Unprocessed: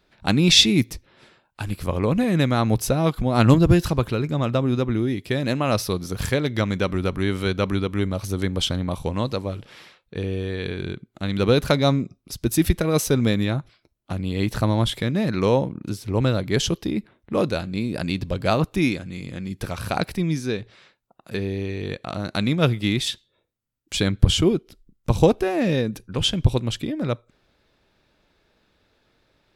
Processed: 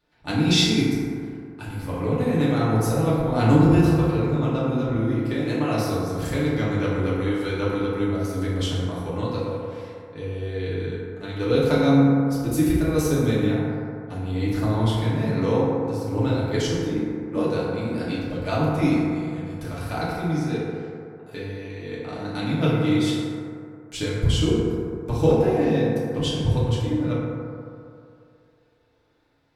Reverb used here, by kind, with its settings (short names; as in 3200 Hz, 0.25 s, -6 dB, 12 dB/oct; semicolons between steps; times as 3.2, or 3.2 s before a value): FDN reverb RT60 2.6 s, low-frequency decay 0.8×, high-frequency decay 0.3×, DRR -9 dB; gain -11.5 dB